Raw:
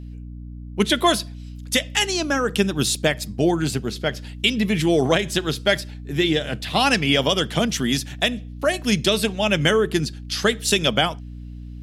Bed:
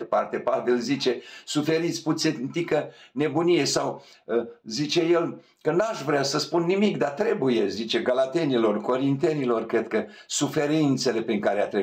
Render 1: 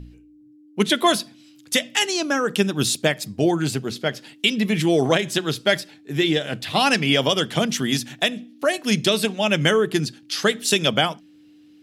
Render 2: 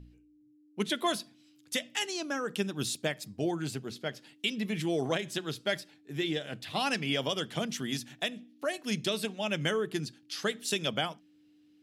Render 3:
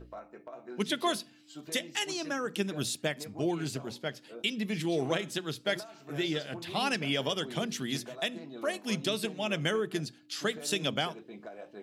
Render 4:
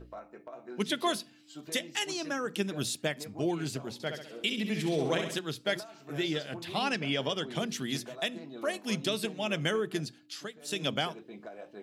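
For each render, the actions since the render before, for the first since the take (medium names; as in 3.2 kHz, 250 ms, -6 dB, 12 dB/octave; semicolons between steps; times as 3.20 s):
de-hum 60 Hz, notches 4
trim -12 dB
add bed -22 dB
3.93–5.39 s: flutter echo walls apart 11.4 m, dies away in 0.61 s; 6.79–7.55 s: distance through air 51 m; 10.20–10.87 s: dip -15 dB, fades 0.32 s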